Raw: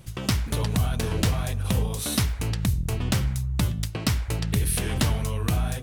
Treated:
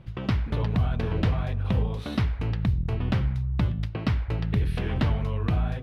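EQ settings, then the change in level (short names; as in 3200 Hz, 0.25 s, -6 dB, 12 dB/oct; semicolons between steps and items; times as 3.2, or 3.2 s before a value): air absorption 350 m; 0.0 dB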